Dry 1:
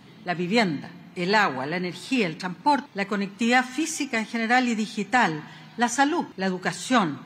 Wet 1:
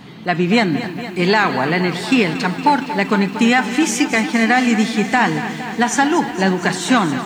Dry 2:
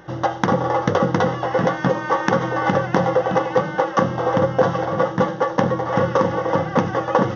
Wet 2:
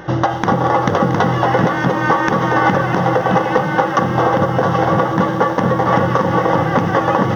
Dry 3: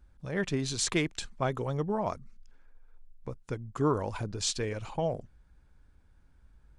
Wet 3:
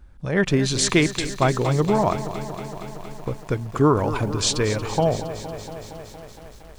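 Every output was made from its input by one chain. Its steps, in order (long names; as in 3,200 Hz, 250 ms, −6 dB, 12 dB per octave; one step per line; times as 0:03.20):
bass and treble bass 0 dB, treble −3 dB
downward compressor, threshold −20 dBFS
dynamic equaliser 520 Hz, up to −5 dB, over −39 dBFS, Q 6.1
boost into a limiter +12.5 dB
feedback echo at a low word length 232 ms, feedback 80%, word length 7 bits, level −12.5 dB
level −1.5 dB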